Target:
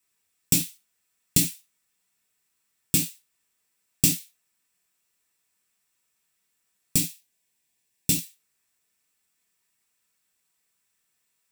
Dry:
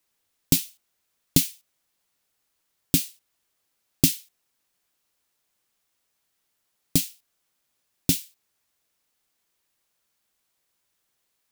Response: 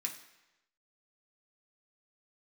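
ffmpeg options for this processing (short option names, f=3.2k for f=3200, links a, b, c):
-filter_complex "[0:a]asettb=1/sr,asplit=3[a][b][c];[a]atrim=end=7.004[d];[b]atrim=start=7:end=8.22,asetpts=PTS-STARTPTS,afade=t=in:d=0.004:c=qsin,afade=t=out:st=1.216:d=0.004:c=qsin,equalizer=f=1.3k:w=5.3:g=-14.5[e];[c]atrim=start=8.216[f];[d][e]acrossfade=d=0.004:c1=hsin:c2=qsin[g];[g][f]acrossfade=d=0.004:c1=qsin:c2=hsin[h];[1:a]atrim=start_sample=2205,afade=t=out:st=0.14:d=0.01,atrim=end_sample=6615[i];[h][i]afir=irnorm=-1:irlink=0"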